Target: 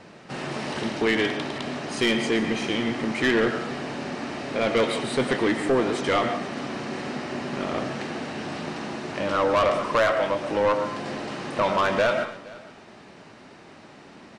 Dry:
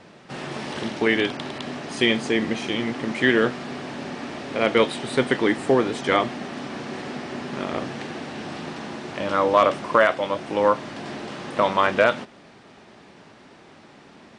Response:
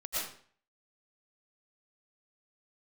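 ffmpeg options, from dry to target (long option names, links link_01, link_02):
-filter_complex "[0:a]bandreject=frequency=3400:width=17,asplit=2[link_01][link_02];[1:a]atrim=start_sample=2205[link_03];[link_02][link_03]afir=irnorm=-1:irlink=0,volume=-13dB[link_04];[link_01][link_04]amix=inputs=2:normalize=0,asoftclip=type=tanh:threshold=-15.5dB,asplit=2[link_05][link_06];[link_06]aecho=0:1:470:0.0841[link_07];[link_05][link_07]amix=inputs=2:normalize=0"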